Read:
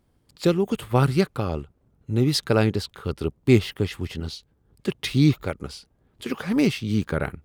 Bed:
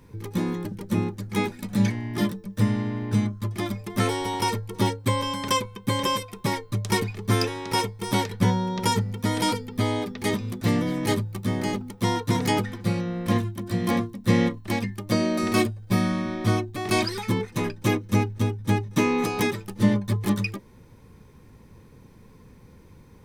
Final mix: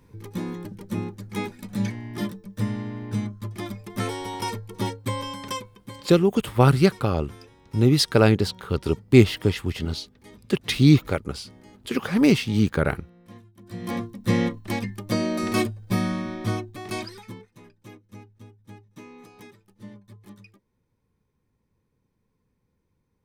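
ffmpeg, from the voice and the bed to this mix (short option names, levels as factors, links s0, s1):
-filter_complex "[0:a]adelay=5650,volume=1.41[s0];[1:a]volume=7.5,afade=t=out:st=5.23:d=0.85:silence=0.112202,afade=t=in:st=13.53:d=0.69:silence=0.0794328,afade=t=out:st=16.12:d=1.38:silence=0.0841395[s1];[s0][s1]amix=inputs=2:normalize=0"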